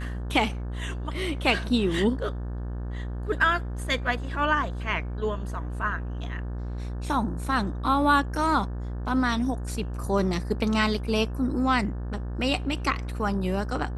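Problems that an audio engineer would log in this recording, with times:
buzz 60 Hz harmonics 30 -32 dBFS

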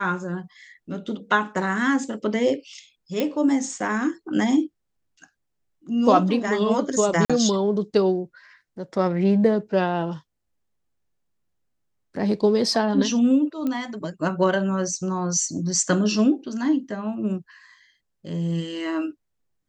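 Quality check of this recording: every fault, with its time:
3.20 s: pop -11 dBFS
7.25–7.30 s: dropout 46 ms
13.67 s: pop -16 dBFS

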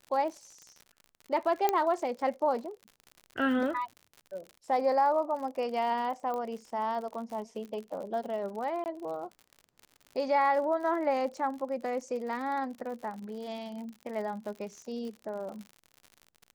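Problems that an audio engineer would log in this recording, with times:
crackle 69 per s -39 dBFS
1.69 s: pop -12 dBFS
6.34 s: pop -24 dBFS
8.84–8.86 s: dropout 19 ms

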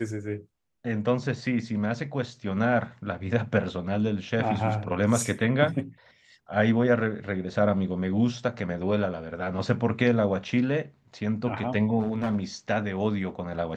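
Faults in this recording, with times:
11.99–12.38 s: clipped -21.5 dBFS

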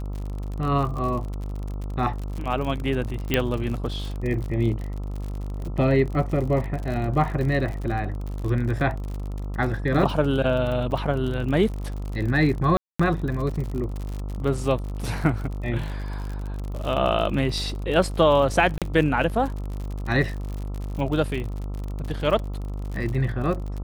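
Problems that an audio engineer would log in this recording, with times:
buzz 50 Hz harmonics 27 -30 dBFS
crackle 56 per s -30 dBFS
3.34 s: pop -6 dBFS
10.91 s: dropout 3.3 ms
12.77–12.99 s: dropout 225 ms
18.78–18.82 s: dropout 37 ms

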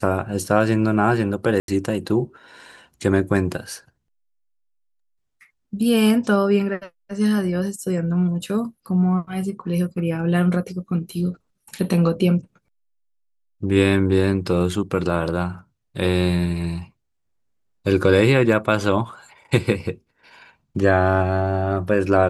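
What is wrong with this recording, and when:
1.60–1.68 s: dropout 82 ms

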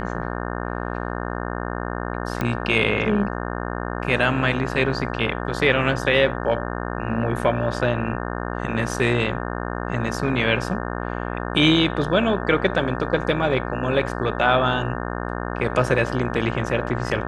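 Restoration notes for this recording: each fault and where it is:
buzz 60 Hz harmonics 30 -28 dBFS
2.41 s: pop -11 dBFS

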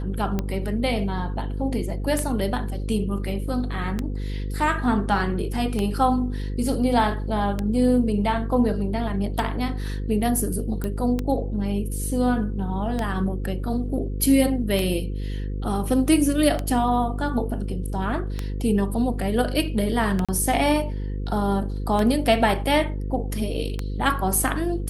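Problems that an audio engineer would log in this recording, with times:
buzz 50 Hz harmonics 10 -28 dBFS
tick 33 1/3 rpm -12 dBFS
10.84 s: pop -15 dBFS
20.25–20.29 s: dropout 36 ms

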